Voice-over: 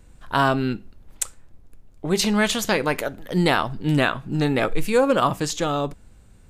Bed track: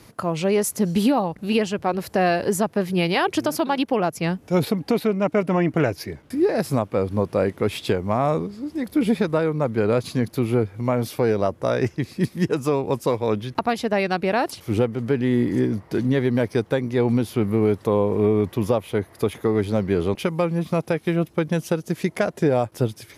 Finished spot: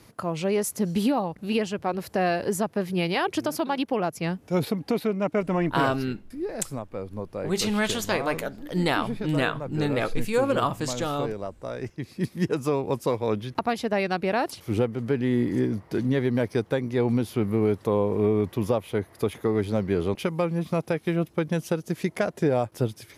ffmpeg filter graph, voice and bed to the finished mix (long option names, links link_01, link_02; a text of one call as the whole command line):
ffmpeg -i stem1.wav -i stem2.wav -filter_complex "[0:a]adelay=5400,volume=-5dB[link_01];[1:a]volume=4dB,afade=type=out:start_time=5.65:duration=0.33:silence=0.421697,afade=type=in:start_time=11.82:duration=0.62:silence=0.375837[link_02];[link_01][link_02]amix=inputs=2:normalize=0" out.wav